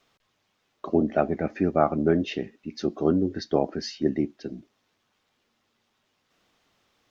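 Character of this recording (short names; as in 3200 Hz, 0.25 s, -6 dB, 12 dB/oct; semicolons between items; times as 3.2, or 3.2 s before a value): noise floor -73 dBFS; spectral tilt -6.0 dB/oct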